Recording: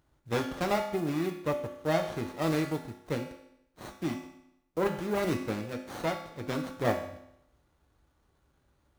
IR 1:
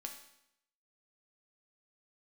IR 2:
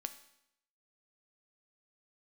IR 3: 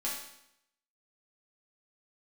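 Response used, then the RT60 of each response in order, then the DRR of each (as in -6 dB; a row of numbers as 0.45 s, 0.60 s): 1; 0.75 s, 0.75 s, 0.75 s; 2.0 dB, 8.5 dB, -7.0 dB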